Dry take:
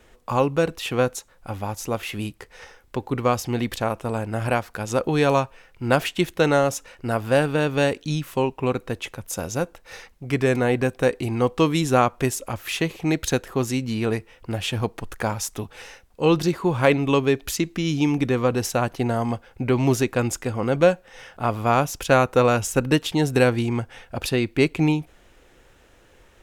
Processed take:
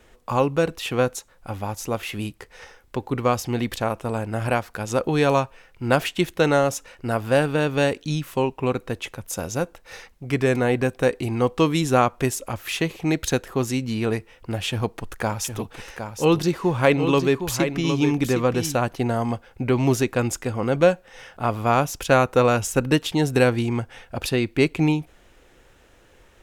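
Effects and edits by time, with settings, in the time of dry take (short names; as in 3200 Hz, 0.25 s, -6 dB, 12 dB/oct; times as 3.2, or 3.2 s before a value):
14.68–18.75 echo 0.762 s -8 dB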